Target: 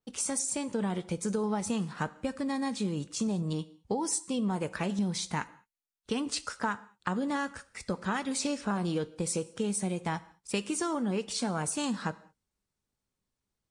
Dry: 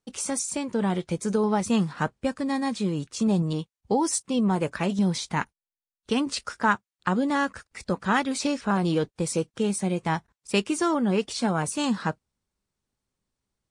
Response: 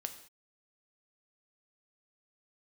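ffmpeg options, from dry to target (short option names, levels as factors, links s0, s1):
-filter_complex "[0:a]adynamicequalizer=threshold=0.00631:dfrequency=8300:dqfactor=1:tfrequency=8300:tqfactor=1:attack=5:release=100:ratio=0.375:range=2.5:mode=boostabove:tftype=bell,acompressor=threshold=0.0631:ratio=6,asplit=2[s0][s1];[1:a]atrim=start_sample=2205[s2];[s1][s2]afir=irnorm=-1:irlink=0,volume=0.794[s3];[s0][s3]amix=inputs=2:normalize=0,volume=0.422"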